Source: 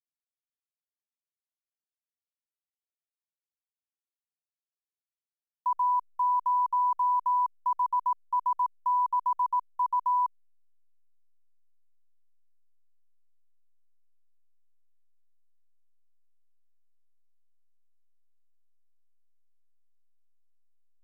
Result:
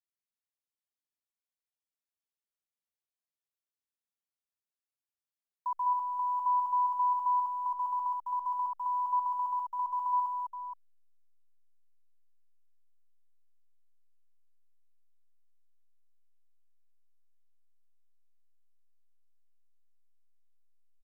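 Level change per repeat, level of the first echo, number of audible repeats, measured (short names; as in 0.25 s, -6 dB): no steady repeat, -3.5 dB, 2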